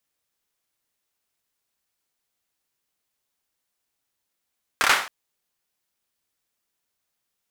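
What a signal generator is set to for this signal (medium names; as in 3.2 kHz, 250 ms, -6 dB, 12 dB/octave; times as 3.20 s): hand clap length 0.27 s, apart 28 ms, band 1.4 kHz, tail 0.44 s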